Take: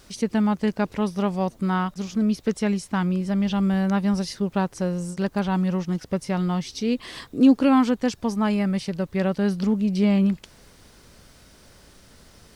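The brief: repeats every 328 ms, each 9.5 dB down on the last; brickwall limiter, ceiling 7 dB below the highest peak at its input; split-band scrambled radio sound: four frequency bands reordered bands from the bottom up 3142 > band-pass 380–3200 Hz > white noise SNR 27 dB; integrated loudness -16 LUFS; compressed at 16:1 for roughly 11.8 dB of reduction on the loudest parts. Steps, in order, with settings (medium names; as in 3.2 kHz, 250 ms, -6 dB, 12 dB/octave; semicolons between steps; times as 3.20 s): compression 16:1, threshold -22 dBFS; peak limiter -20.5 dBFS; feedback delay 328 ms, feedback 33%, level -9.5 dB; four frequency bands reordered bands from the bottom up 3142; band-pass 380–3200 Hz; white noise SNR 27 dB; trim +11.5 dB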